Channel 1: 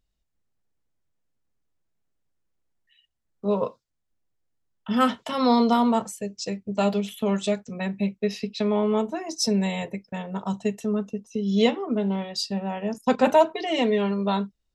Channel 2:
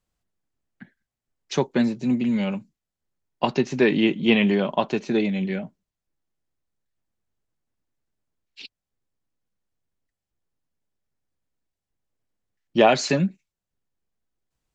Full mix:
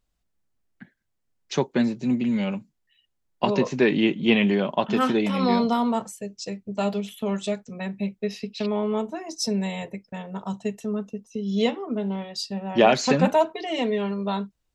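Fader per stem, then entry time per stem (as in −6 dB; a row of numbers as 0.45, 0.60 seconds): −2.5, −1.0 decibels; 0.00, 0.00 seconds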